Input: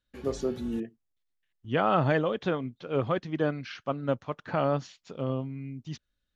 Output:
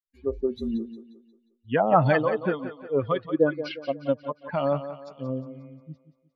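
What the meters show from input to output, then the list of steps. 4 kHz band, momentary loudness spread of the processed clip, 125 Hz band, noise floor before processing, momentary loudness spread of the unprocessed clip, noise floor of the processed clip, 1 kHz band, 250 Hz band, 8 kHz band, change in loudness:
−0.5 dB, 19 LU, +1.0 dB, −81 dBFS, 14 LU, −71 dBFS, +4.0 dB, +2.5 dB, can't be measured, +3.5 dB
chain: spectral dynamics exaggerated over time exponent 2
auto-filter low-pass sine 2 Hz 480–6,400 Hz
on a send: feedback echo with a high-pass in the loop 178 ms, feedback 47%, high-pass 200 Hz, level −11 dB
on the sum: level +6 dB

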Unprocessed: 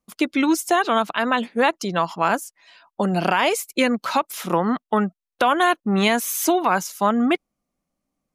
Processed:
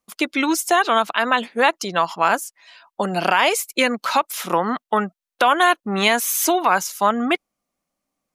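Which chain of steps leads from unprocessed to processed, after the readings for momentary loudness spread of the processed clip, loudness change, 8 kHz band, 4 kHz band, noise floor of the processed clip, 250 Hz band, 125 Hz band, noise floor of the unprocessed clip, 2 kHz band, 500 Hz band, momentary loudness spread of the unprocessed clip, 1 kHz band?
6 LU, +1.5 dB, +4.0 dB, +4.0 dB, below −85 dBFS, −3.0 dB, −4.5 dB, below −85 dBFS, +3.5 dB, +0.5 dB, 5 LU, +2.5 dB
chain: low-shelf EQ 340 Hz −11.5 dB
level +4 dB

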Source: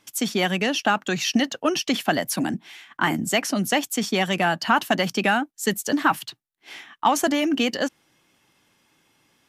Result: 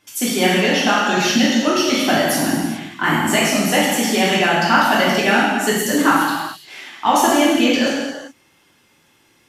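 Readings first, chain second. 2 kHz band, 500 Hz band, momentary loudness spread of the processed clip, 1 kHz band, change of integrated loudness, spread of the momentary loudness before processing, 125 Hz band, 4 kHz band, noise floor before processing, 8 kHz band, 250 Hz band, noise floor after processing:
+7.5 dB, +7.0 dB, 8 LU, +6.5 dB, +6.5 dB, 8 LU, +5.5 dB, +7.0 dB, −70 dBFS, +7.0 dB, +7.0 dB, −57 dBFS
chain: reverb whose tail is shaped and stops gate 460 ms falling, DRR −7.5 dB
level −1 dB

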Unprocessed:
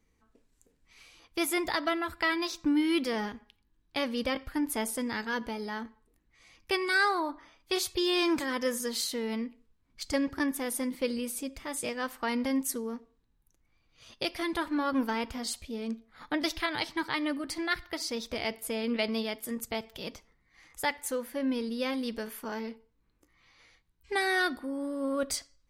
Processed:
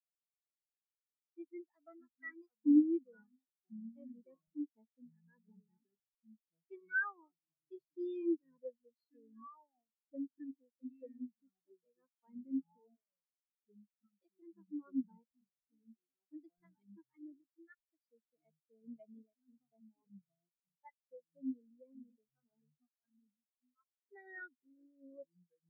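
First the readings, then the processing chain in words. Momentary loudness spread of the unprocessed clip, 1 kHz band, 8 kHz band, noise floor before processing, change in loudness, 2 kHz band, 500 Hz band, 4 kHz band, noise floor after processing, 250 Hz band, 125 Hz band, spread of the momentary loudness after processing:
10 LU, −25.0 dB, below −40 dB, −72 dBFS, −8.0 dB, −14.0 dB, −17.0 dB, below −40 dB, below −85 dBFS, −8.0 dB, below −15 dB, 20 LU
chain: delay with pitch and tempo change per echo 155 ms, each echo −5 semitones, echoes 2, each echo −6 dB
every bin expanded away from the loudest bin 4 to 1
level −3 dB

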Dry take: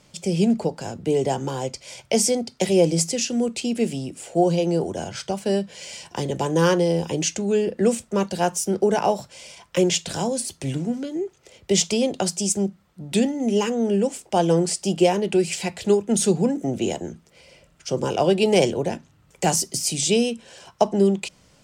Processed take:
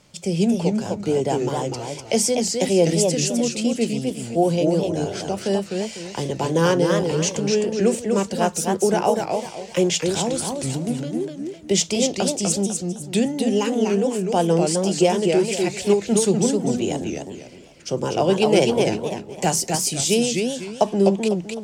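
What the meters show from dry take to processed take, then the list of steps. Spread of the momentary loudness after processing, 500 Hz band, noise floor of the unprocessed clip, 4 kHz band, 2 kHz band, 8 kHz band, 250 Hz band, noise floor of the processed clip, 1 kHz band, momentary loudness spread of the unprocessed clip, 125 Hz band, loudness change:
9 LU, +1.5 dB, −58 dBFS, +1.5 dB, +1.5 dB, +1.5 dB, +1.5 dB, −39 dBFS, +1.5 dB, 10 LU, +1.5 dB, +1.5 dB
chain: feedback echo with a swinging delay time 253 ms, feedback 32%, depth 201 cents, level −4 dB

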